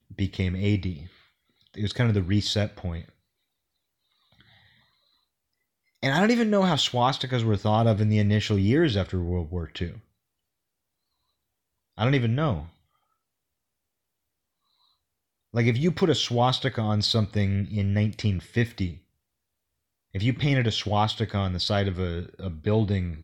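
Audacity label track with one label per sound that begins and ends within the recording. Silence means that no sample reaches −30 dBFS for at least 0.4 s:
1.780000	3.000000	sound
6.030000	9.910000	sound
11.980000	12.600000	sound
15.540000	18.900000	sound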